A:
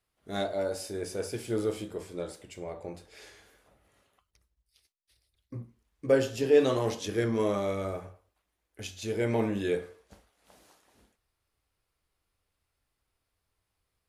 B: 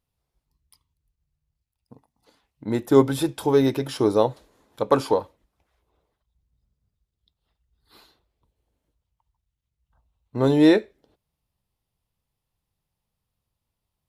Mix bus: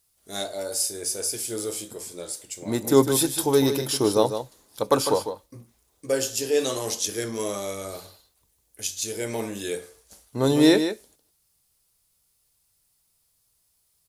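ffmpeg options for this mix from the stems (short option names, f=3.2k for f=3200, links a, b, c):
-filter_complex "[0:a]bass=f=250:g=-4,treble=f=4k:g=5,volume=-1dB[a];[1:a]volume=-1.5dB,asplit=2[b][c];[c]volume=-9dB,aecho=0:1:152:1[d];[a][b][d]amix=inputs=3:normalize=0,bass=f=250:g=-1,treble=f=4k:g=15"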